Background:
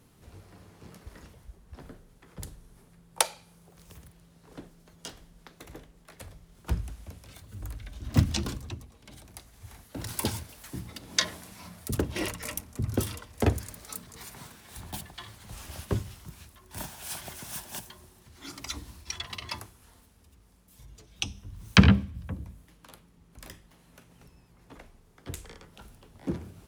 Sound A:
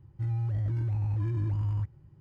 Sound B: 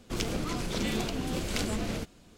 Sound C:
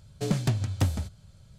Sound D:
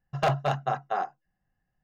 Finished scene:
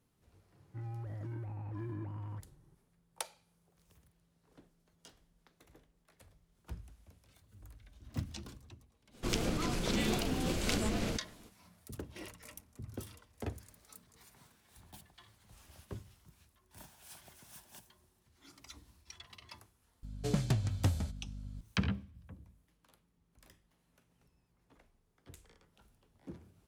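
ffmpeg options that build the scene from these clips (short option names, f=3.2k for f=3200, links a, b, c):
-filter_complex "[0:a]volume=-16dB[a];[1:a]highpass=200,lowpass=2.1k[b];[3:a]aeval=exprs='val(0)+0.0126*(sin(2*PI*50*n/s)+sin(2*PI*2*50*n/s)/2+sin(2*PI*3*50*n/s)/3+sin(2*PI*4*50*n/s)/4+sin(2*PI*5*50*n/s)/5)':c=same[c];[b]atrim=end=2.2,asetpts=PTS-STARTPTS,volume=-2.5dB,afade=t=in:d=0.004:c=hsin,afade=t=out:st=2.196:d=0.004:c=hsin,adelay=550[d];[2:a]atrim=end=2.37,asetpts=PTS-STARTPTS,volume=-1.5dB,afade=t=in:d=0.02,afade=t=out:st=2.35:d=0.02,adelay=9130[e];[c]atrim=end=1.58,asetpts=PTS-STARTPTS,volume=-5.5dB,afade=t=in:d=0.004:c=hsin,afade=t=out:st=1.576:d=0.004:c=hsin,adelay=20030[f];[a][d][e][f]amix=inputs=4:normalize=0"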